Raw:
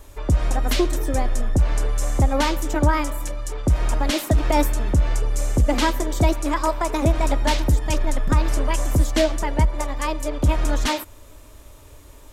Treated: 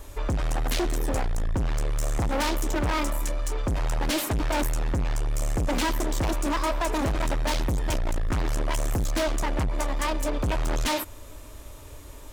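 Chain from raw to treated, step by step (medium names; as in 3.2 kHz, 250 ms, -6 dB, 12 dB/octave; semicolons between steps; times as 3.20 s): overload inside the chain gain 25 dB; trim +2 dB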